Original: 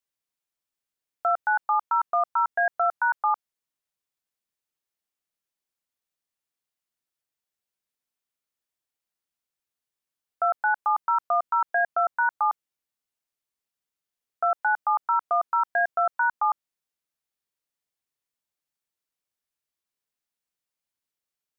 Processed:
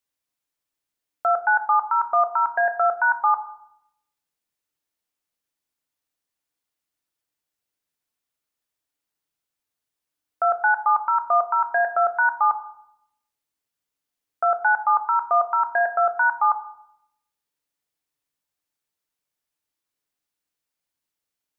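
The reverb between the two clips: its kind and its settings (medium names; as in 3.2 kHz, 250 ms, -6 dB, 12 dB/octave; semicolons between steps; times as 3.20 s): FDN reverb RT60 0.74 s, low-frequency decay 1.55×, high-frequency decay 0.35×, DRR 8 dB; trim +3 dB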